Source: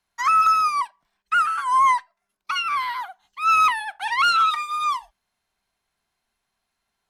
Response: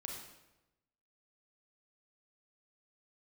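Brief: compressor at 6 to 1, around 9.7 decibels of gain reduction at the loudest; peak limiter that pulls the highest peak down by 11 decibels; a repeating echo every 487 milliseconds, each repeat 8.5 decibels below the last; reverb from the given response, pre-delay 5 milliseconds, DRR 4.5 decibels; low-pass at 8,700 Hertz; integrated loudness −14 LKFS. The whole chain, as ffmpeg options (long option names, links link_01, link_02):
-filter_complex "[0:a]lowpass=8700,acompressor=threshold=-25dB:ratio=6,alimiter=level_in=4dB:limit=-24dB:level=0:latency=1,volume=-4dB,aecho=1:1:487|974|1461|1948:0.376|0.143|0.0543|0.0206,asplit=2[link_01][link_02];[1:a]atrim=start_sample=2205,adelay=5[link_03];[link_02][link_03]afir=irnorm=-1:irlink=0,volume=-2.5dB[link_04];[link_01][link_04]amix=inputs=2:normalize=0,volume=18.5dB"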